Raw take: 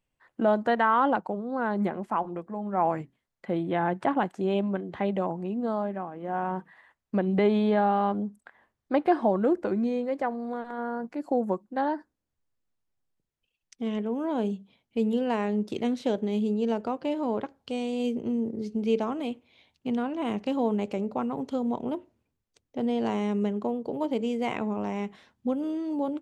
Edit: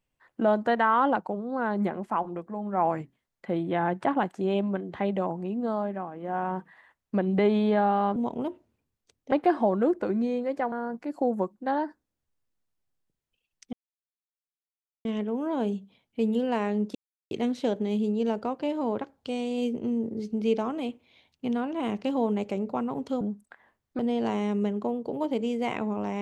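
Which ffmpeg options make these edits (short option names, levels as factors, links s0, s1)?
-filter_complex "[0:a]asplit=8[s0][s1][s2][s3][s4][s5][s6][s7];[s0]atrim=end=8.162[s8];[s1]atrim=start=21.628:end=22.792[s9];[s2]atrim=start=8.938:end=10.342[s10];[s3]atrim=start=10.818:end=13.83,asetpts=PTS-STARTPTS,afade=t=out:st=3.008:d=0.004:c=hsin,apad=pad_dur=1.32[s11];[s4]atrim=start=13.83:end=15.73,asetpts=PTS-STARTPTS,afade=t=in:d=0.004:c=hsin,afade=t=out:st=1.896:d=0.004:c=hsin,apad=pad_dur=0.36[s12];[s5]atrim=start=15.73:end=21.632,asetpts=PTS-STARTPTS,afade=t=in:d=0.004:c=hsin[s13];[s6]atrim=start=8.158:end=8.942[s14];[s7]atrim=start=22.788[s15];[s8][s9]acrossfade=d=0.004:c1=hsin:c2=hsin[s16];[s16][s10]acrossfade=d=0.004:c1=hsin:c2=hsin[s17];[s11][s12][s13]concat=n=3:v=0:a=1[s18];[s17][s18]acrossfade=d=0.004:c1=hsin:c2=hsin[s19];[s19][s14]acrossfade=d=0.004:c1=hsin:c2=hsin[s20];[s20][s15]acrossfade=d=0.004:c1=hsin:c2=hsin"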